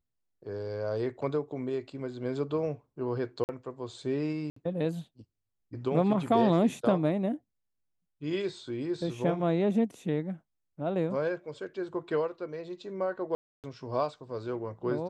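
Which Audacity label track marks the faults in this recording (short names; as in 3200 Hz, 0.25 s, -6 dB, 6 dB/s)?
3.440000	3.490000	gap 49 ms
4.500000	4.560000	gap 64 ms
13.350000	13.640000	gap 0.288 s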